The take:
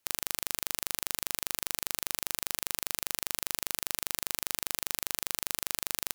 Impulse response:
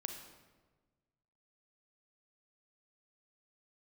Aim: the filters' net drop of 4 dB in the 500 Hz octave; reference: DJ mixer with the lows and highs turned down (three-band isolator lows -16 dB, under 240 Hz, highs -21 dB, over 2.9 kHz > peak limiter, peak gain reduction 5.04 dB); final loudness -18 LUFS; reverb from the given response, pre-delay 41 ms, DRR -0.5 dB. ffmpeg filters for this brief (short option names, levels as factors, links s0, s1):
-filter_complex "[0:a]equalizer=f=500:t=o:g=-4.5,asplit=2[s0][s1];[1:a]atrim=start_sample=2205,adelay=41[s2];[s1][s2]afir=irnorm=-1:irlink=0,volume=1.19[s3];[s0][s3]amix=inputs=2:normalize=0,acrossover=split=240 2900:gain=0.158 1 0.0891[s4][s5][s6];[s4][s5][s6]amix=inputs=3:normalize=0,volume=23.7,alimiter=limit=1:level=0:latency=1"